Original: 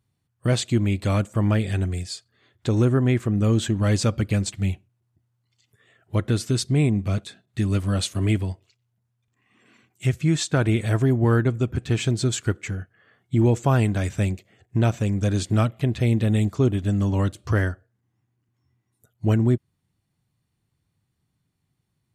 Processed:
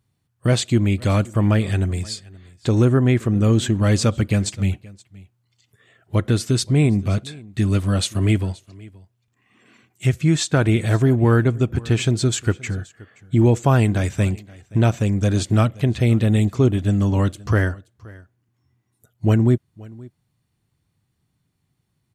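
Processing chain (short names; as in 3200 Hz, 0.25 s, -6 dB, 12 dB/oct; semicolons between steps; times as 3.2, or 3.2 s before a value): echo 0.525 s -22.5 dB; gain +3.5 dB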